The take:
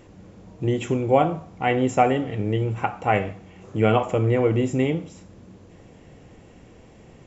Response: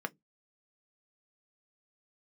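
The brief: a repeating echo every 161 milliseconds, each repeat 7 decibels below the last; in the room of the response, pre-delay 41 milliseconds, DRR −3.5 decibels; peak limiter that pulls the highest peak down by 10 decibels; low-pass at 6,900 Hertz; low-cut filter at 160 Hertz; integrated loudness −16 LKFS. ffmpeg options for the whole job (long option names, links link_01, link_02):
-filter_complex "[0:a]highpass=160,lowpass=6900,alimiter=limit=-15dB:level=0:latency=1,aecho=1:1:161|322|483|644|805:0.447|0.201|0.0905|0.0407|0.0183,asplit=2[link_01][link_02];[1:a]atrim=start_sample=2205,adelay=41[link_03];[link_02][link_03]afir=irnorm=-1:irlink=0,volume=0.5dB[link_04];[link_01][link_04]amix=inputs=2:normalize=0,volume=6dB"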